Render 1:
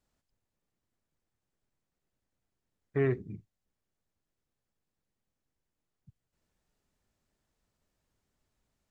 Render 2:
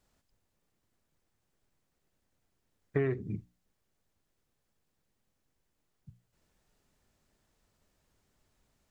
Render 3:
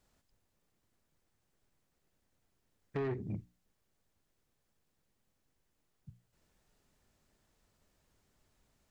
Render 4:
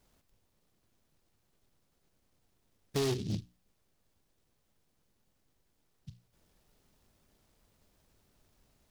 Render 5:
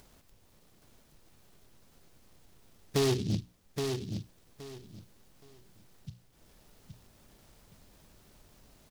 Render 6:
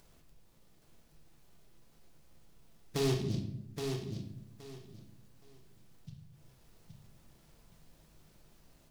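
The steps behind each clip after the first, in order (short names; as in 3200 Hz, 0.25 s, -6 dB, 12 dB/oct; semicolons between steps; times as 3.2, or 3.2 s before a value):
notches 60/120/180/240/300 Hz; compressor 12:1, threshold -32 dBFS, peak gain reduction 10 dB; gain +6.5 dB
soft clip -31 dBFS, distortion -8 dB
noise-modulated delay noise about 3900 Hz, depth 0.12 ms; gain +4.5 dB
upward compressor, threshold -56 dBFS; on a send: feedback echo 0.821 s, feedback 22%, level -6 dB; on the sum: gain +4 dB
shoebox room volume 220 m³, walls mixed, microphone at 0.74 m; gain -6 dB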